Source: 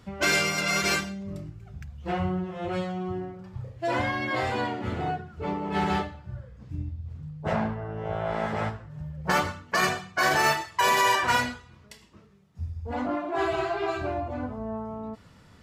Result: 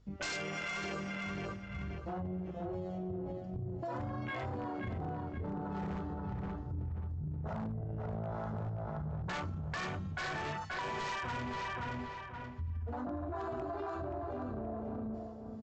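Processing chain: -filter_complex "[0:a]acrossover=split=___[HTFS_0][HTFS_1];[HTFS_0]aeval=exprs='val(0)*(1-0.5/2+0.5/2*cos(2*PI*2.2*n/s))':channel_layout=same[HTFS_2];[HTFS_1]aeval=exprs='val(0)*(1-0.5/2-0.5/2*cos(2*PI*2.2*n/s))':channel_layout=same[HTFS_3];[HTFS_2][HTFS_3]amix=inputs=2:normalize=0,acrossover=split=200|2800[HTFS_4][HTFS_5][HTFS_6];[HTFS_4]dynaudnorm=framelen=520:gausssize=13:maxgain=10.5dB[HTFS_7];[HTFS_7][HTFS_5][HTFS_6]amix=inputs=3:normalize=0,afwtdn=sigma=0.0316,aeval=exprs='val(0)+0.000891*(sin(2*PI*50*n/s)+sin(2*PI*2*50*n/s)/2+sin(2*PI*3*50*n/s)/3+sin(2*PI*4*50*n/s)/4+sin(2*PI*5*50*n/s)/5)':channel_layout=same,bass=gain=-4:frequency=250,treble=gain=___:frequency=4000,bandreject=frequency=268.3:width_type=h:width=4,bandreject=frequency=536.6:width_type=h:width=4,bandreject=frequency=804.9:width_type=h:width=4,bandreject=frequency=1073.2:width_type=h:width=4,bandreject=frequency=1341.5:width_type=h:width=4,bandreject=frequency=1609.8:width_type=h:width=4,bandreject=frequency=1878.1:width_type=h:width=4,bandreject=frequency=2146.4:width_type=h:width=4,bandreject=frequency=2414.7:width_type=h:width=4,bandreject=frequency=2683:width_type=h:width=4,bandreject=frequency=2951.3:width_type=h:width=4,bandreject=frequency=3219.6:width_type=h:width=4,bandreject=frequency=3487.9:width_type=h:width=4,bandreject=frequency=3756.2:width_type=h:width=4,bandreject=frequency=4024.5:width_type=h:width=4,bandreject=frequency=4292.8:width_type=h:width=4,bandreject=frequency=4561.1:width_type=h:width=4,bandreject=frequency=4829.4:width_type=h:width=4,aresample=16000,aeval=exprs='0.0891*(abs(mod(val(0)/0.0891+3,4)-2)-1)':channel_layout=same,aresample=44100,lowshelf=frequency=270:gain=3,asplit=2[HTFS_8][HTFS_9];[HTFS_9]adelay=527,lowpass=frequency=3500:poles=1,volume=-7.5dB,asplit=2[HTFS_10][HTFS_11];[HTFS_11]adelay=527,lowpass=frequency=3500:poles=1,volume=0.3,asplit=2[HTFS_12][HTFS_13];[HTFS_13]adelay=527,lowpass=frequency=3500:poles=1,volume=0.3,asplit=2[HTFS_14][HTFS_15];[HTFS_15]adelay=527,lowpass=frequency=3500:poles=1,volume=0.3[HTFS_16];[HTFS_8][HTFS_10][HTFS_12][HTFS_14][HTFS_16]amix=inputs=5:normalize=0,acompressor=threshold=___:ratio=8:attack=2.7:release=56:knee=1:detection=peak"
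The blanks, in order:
750, 8, -36dB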